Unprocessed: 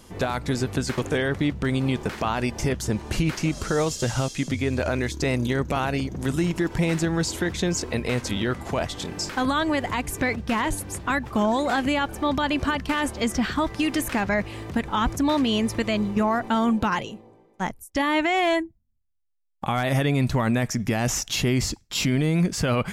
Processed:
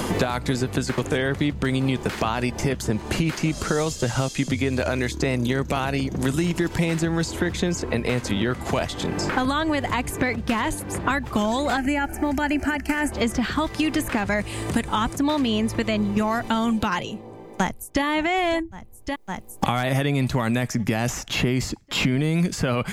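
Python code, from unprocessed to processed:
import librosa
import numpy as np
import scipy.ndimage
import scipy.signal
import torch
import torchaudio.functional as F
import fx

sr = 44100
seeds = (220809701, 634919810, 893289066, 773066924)

y = fx.fixed_phaser(x, sr, hz=730.0, stages=8, at=(11.77, 13.12))
y = fx.peak_eq(y, sr, hz=8900.0, db=11.5, octaves=0.59, at=(14.25, 15.16))
y = fx.echo_throw(y, sr, start_s=17.11, length_s=0.92, ms=560, feedback_pct=65, wet_db=-16.0)
y = fx.notch(y, sr, hz=5600.0, q=20.0)
y = fx.band_squash(y, sr, depth_pct=100)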